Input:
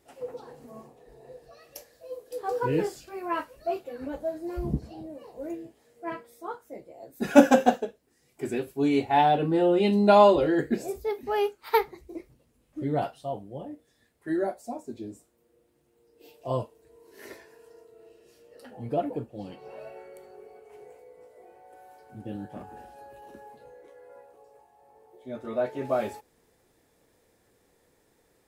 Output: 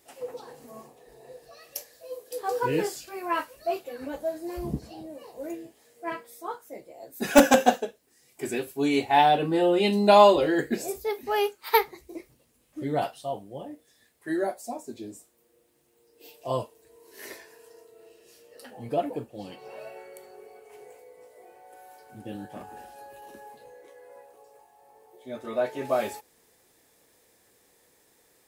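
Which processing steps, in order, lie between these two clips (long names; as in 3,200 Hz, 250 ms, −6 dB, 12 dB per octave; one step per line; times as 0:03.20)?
spectral tilt +2 dB per octave
notch filter 1,400 Hz, Q 26
in parallel at −3.5 dB: wrap-around overflow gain 6.5 dB
on the sum: level −2 dB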